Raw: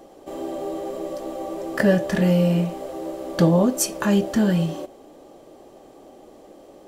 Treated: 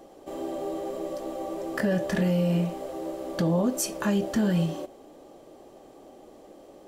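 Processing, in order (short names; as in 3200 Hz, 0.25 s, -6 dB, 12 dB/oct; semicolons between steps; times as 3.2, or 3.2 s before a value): limiter -13.5 dBFS, peak gain reduction 8 dB; gain -3 dB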